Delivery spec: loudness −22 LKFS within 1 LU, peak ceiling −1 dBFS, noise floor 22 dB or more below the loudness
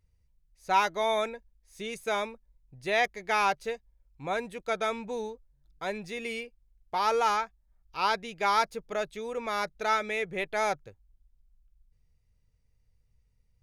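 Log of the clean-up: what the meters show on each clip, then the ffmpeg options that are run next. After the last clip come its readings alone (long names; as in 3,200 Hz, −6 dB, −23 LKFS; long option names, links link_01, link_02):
integrated loudness −30.0 LKFS; sample peak −12.0 dBFS; target loudness −22.0 LKFS
→ -af "volume=8dB"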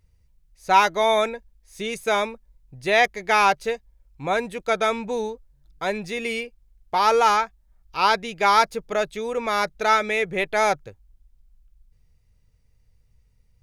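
integrated loudness −22.5 LKFS; sample peak −4.0 dBFS; background noise floor −62 dBFS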